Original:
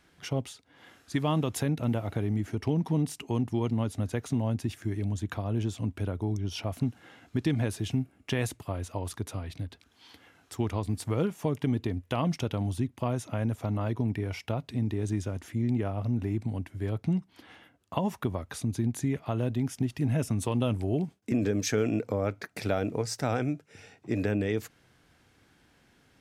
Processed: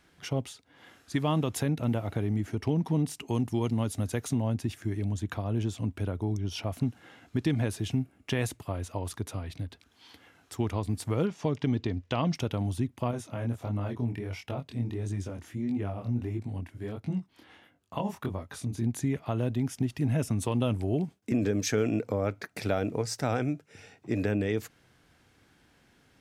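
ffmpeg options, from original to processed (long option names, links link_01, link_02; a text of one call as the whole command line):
ffmpeg -i in.wav -filter_complex "[0:a]asettb=1/sr,asplit=3[link_01][link_02][link_03];[link_01]atrim=end=3.284[link_04];[link_02]atrim=start=3.28:end=4.34,asetpts=PTS-STARTPTS,afade=type=in:duration=0.004:curve=qsin,afade=type=out:start_time=1.056:duration=0.004:curve=qsin,highshelf=frequency=5200:gain=9[link_05];[link_03]atrim=start=4.336[link_06];[link_04][link_05]acrossfade=duration=0.004:curve1=hsin:curve2=qsin[link_07];[link_07][link_06]acrossfade=duration=0.004:curve1=qsin:curve2=hsin,asettb=1/sr,asplit=3[link_08][link_09][link_10];[link_08]atrim=end=11.264[link_11];[link_09]atrim=start=11.26:end=12.35,asetpts=PTS-STARTPTS,afade=type=in:duration=0.004:curve=qsin,afade=type=out:start_time=1.086:duration=0.004:curve=qsin,lowpass=frequency=5300:width_type=q:width=1.5[link_12];[link_10]atrim=start=12.346[link_13];[link_11][link_12]acrossfade=duration=0.004:curve1=hsin:curve2=qsin[link_14];[link_14][link_13]acrossfade=duration=0.004:curve1=qsin:curve2=hsin,asettb=1/sr,asplit=3[link_15][link_16][link_17];[link_15]atrim=end=13.114[link_18];[link_16]atrim=start=13.11:end=18.83,asetpts=PTS-STARTPTS,afade=type=in:duration=0.004:curve=qsin,afade=type=out:start_time=5.716:duration=0.004:curve=qsin,flanger=delay=20:depth=5.6:speed=1.5[link_19];[link_17]atrim=start=18.826[link_20];[link_18][link_19]acrossfade=duration=0.004:curve1=hsin:curve2=qsin[link_21];[link_21][link_20]acrossfade=duration=0.004:curve1=qsin:curve2=hsin" out.wav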